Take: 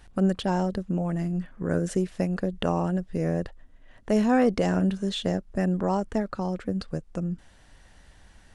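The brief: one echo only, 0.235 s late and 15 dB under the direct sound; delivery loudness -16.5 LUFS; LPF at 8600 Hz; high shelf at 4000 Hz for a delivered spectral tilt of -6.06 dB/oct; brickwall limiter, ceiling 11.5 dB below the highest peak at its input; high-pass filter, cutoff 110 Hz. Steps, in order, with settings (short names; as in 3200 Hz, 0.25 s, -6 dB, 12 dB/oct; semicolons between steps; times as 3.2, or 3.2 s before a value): HPF 110 Hz; LPF 8600 Hz; high shelf 4000 Hz +5.5 dB; limiter -22.5 dBFS; echo 0.235 s -15 dB; gain +15.5 dB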